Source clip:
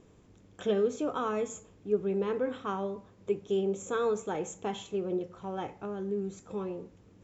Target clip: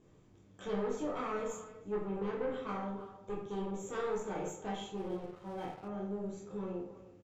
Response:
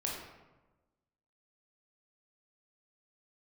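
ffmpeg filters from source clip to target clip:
-filter_complex "[0:a]asplit=2[link_01][link_02];[link_02]adelay=320,highpass=300,lowpass=3400,asoftclip=type=hard:threshold=-27dB,volume=-15dB[link_03];[link_01][link_03]amix=inputs=2:normalize=0,aeval=exprs='(tanh(22.4*val(0)+0.5)-tanh(0.5))/22.4':channel_layout=same[link_04];[1:a]atrim=start_sample=2205,asetrate=83790,aresample=44100[link_05];[link_04][link_05]afir=irnorm=-1:irlink=0,asettb=1/sr,asplit=3[link_06][link_07][link_08];[link_06]atrim=end=4.974[link_09];[link_07]atrim=start=4.97:end=5.88,asetpts=PTS-STARTPTS,afade=type=in:duration=0.004:curve=qsin,afade=type=out:start_time=0.906:duration=0.004:curve=qsin,aeval=exprs='sgn(val(0))*max(abs(val(0))-0.0015,0)':channel_layout=same[link_10];[link_08]atrim=start=5.876[link_11];[link_09][link_10]acrossfade=duration=0.004:curve1=hsin:curve2=qsin[link_12];[link_12][link_11]acrossfade=duration=0.004:curve1=qsin:curve2=hsin"

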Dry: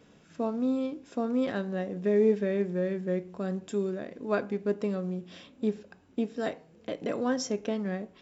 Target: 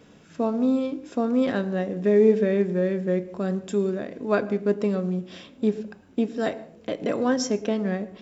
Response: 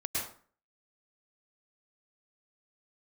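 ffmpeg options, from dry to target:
-filter_complex "[0:a]asplit=2[link_01][link_02];[link_02]equalizer=frequency=220:width=0.33:gain=8.5[link_03];[1:a]atrim=start_sample=2205[link_04];[link_03][link_04]afir=irnorm=-1:irlink=0,volume=-25dB[link_05];[link_01][link_05]amix=inputs=2:normalize=0,volume=5dB"

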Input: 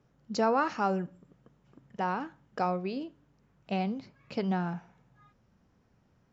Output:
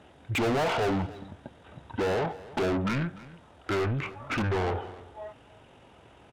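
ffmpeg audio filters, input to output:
ffmpeg -i in.wav -filter_complex "[0:a]asetrate=22696,aresample=44100,atempo=1.94306,bandreject=frequency=1100:width=17,asplit=2[link_01][link_02];[link_02]highpass=frequency=720:poles=1,volume=37dB,asoftclip=type=tanh:threshold=-15dB[link_03];[link_01][link_03]amix=inputs=2:normalize=0,lowpass=frequency=5600:poles=1,volume=-6dB,aecho=1:1:296:0.112,volume=-5dB" out.wav

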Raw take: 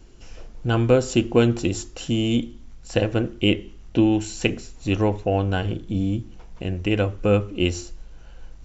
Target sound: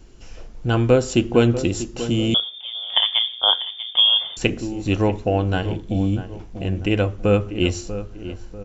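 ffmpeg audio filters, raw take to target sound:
ffmpeg -i in.wav -filter_complex "[0:a]asplit=2[link_01][link_02];[link_02]adelay=642,lowpass=frequency=1600:poles=1,volume=-12dB,asplit=2[link_03][link_04];[link_04]adelay=642,lowpass=frequency=1600:poles=1,volume=0.43,asplit=2[link_05][link_06];[link_06]adelay=642,lowpass=frequency=1600:poles=1,volume=0.43,asplit=2[link_07][link_08];[link_08]adelay=642,lowpass=frequency=1600:poles=1,volume=0.43[link_09];[link_01][link_03][link_05][link_07][link_09]amix=inputs=5:normalize=0,asettb=1/sr,asplit=3[link_10][link_11][link_12];[link_10]atrim=end=2.344[link_13];[link_11]atrim=start=2.34:end=4.37,asetpts=PTS-STARTPTS,afade=type=in:duration=0.004:curve=qsin,afade=type=out:start_time=2.026:duration=0.004:curve=qsin,lowpass=frequency=3100:width_type=q:width=0.5098,lowpass=frequency=3100:width_type=q:width=0.6013,lowpass=frequency=3100:width_type=q:width=0.9,lowpass=frequency=3100:width_type=q:width=2.563,afreqshift=-3600[link_14];[link_12]atrim=start=4.366[link_15];[link_13][link_14]acrossfade=duration=0.004:curve1=hsin:curve2=qsin[link_16];[link_16][link_15]acrossfade=duration=0.004:curve1=qsin:curve2=hsin,volume=1.5dB" out.wav

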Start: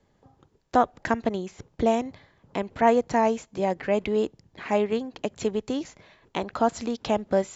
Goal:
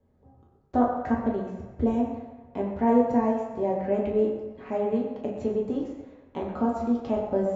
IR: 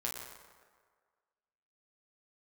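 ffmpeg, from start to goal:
-filter_complex "[0:a]tiltshelf=frequency=1200:gain=10[link_01];[1:a]atrim=start_sample=2205,asetrate=57330,aresample=44100[link_02];[link_01][link_02]afir=irnorm=-1:irlink=0,volume=-7dB"

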